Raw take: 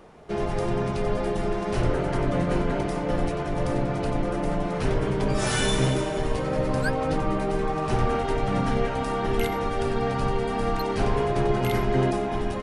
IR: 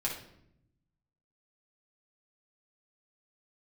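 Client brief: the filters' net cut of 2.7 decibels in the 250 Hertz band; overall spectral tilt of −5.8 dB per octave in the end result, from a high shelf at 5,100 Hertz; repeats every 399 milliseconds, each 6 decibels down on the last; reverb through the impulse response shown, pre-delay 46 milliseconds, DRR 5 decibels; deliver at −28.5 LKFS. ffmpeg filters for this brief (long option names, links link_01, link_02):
-filter_complex "[0:a]equalizer=frequency=250:width_type=o:gain=-4,highshelf=frequency=5100:gain=4,aecho=1:1:399|798|1197|1596|1995|2394:0.501|0.251|0.125|0.0626|0.0313|0.0157,asplit=2[link_01][link_02];[1:a]atrim=start_sample=2205,adelay=46[link_03];[link_02][link_03]afir=irnorm=-1:irlink=0,volume=-9dB[link_04];[link_01][link_04]amix=inputs=2:normalize=0,volume=-5dB"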